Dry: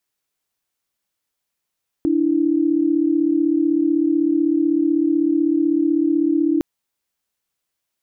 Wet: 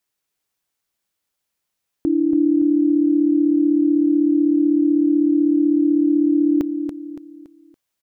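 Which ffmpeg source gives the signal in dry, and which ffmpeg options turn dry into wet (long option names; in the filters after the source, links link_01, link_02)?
-f lavfi -i "aevalsrc='0.133*(sin(2*PI*293.66*t)+sin(2*PI*329.63*t))':duration=4.56:sample_rate=44100"
-af "aecho=1:1:283|566|849|1132:0.422|0.164|0.0641|0.025"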